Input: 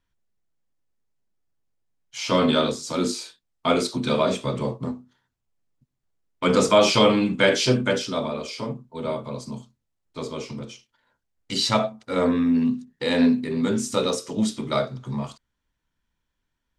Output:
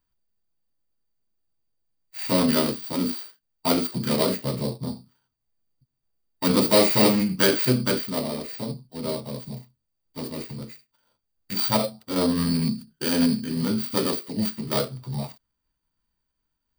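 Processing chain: sorted samples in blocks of 8 samples; formant shift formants -3 st; trim -1 dB

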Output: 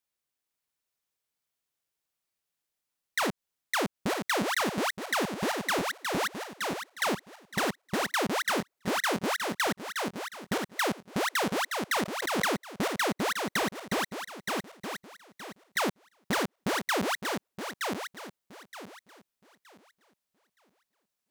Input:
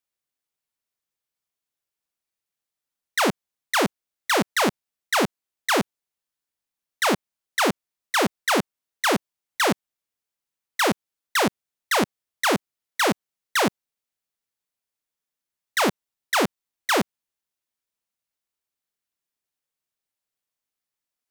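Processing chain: backward echo that repeats 460 ms, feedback 49%, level -5 dB; compression 6:1, threshold -25 dBFS, peak gain reduction 9 dB; saturation -19.5 dBFS, distortion -22 dB; 12.03–12.52 s: swell ahead of each attack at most 29 dB/s

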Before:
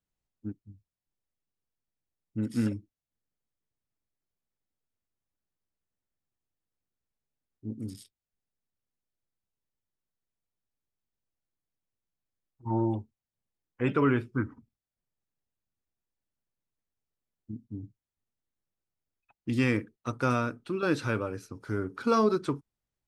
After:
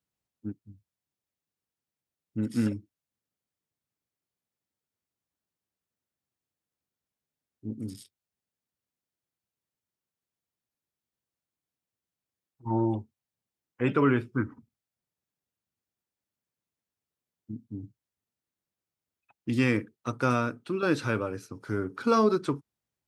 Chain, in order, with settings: high-pass 87 Hz; trim +1.5 dB

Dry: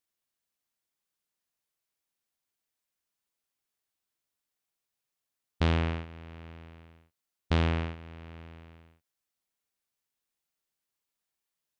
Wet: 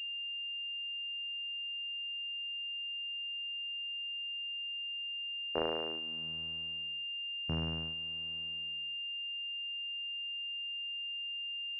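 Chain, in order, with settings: Doppler pass-by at 4.13 s, 8 m/s, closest 7.8 m; high-pass sweep 470 Hz -> 120 Hz, 5.83–6.39 s; class-D stage that switches slowly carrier 2.8 kHz

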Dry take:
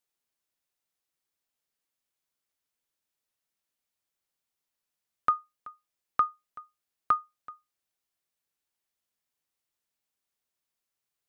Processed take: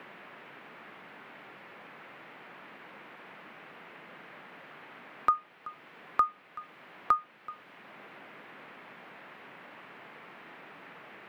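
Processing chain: band noise 150–2400 Hz -59 dBFS; three bands compressed up and down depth 40%; trim +7 dB

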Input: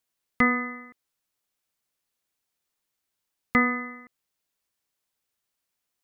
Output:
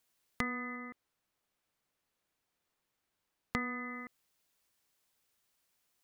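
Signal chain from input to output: 0.76–3.57 s: treble shelf 3.3 kHz -10 dB; compression 6:1, threshold -39 dBFS, peak gain reduction 20.5 dB; trim +4 dB

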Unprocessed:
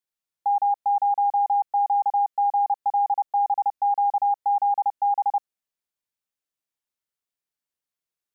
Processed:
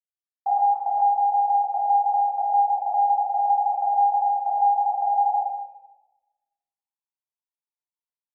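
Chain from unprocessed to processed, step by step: auto-wah 500–1000 Hz, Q 6.6, down, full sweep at -18.5 dBFS; high-order bell 760 Hz +15 dB 1 oct; level rider gain up to 10 dB; gate with hold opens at -24 dBFS; level held to a coarse grid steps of 22 dB; tape echo 133 ms, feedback 61%, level -20 dB, low-pass 1 kHz; simulated room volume 460 m³, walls mixed, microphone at 3.9 m; trim -8.5 dB

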